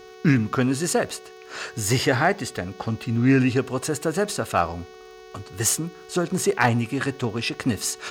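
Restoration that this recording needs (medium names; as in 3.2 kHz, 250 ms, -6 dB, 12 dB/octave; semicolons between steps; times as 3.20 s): clip repair -7.5 dBFS; de-click; de-hum 371.6 Hz, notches 18; band-stop 440 Hz, Q 30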